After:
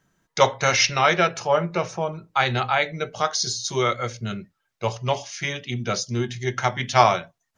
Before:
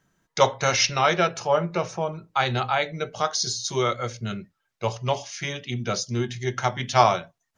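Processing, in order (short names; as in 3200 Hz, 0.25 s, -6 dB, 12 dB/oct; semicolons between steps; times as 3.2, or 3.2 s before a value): dynamic EQ 2000 Hz, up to +4 dB, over -36 dBFS, Q 1.7; gain +1 dB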